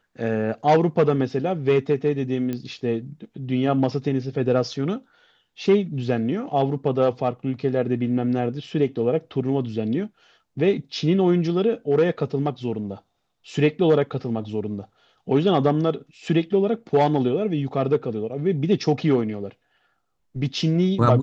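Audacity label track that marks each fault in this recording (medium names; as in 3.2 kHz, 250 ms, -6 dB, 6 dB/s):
2.530000	2.530000	pop -16 dBFS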